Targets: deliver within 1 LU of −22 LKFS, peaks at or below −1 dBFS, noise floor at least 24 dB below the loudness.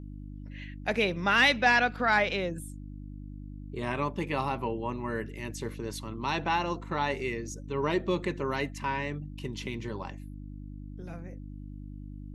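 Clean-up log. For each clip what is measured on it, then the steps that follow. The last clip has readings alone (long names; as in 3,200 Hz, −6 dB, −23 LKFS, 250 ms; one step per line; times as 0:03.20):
mains hum 50 Hz; hum harmonics up to 300 Hz; level of the hum −39 dBFS; integrated loudness −29.5 LKFS; sample peak −11.0 dBFS; target loudness −22.0 LKFS
→ hum removal 50 Hz, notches 6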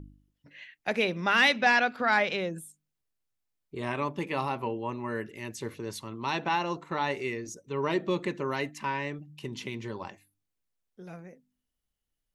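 mains hum none found; integrated loudness −29.5 LKFS; sample peak −11.0 dBFS; target loudness −22.0 LKFS
→ level +7.5 dB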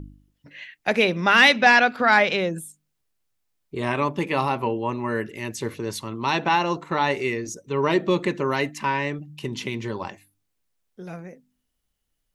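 integrated loudness −22.0 LKFS; sample peak −3.5 dBFS; background noise floor −76 dBFS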